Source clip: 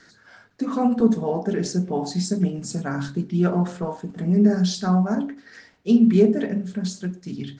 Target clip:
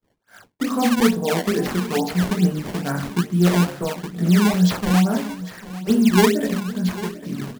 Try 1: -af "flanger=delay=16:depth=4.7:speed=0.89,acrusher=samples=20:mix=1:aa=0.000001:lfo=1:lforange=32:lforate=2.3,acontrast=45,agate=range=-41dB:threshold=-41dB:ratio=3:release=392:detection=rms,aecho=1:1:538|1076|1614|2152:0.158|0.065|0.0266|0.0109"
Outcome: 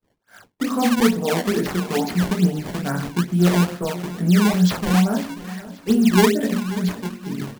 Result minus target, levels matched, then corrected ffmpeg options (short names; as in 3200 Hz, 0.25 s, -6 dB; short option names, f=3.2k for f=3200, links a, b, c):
echo 0.258 s early
-af "flanger=delay=16:depth=4.7:speed=0.89,acrusher=samples=20:mix=1:aa=0.000001:lfo=1:lforange=32:lforate=2.3,acontrast=45,agate=range=-41dB:threshold=-41dB:ratio=3:release=392:detection=rms,aecho=1:1:796|1592|2388|3184:0.158|0.065|0.0266|0.0109"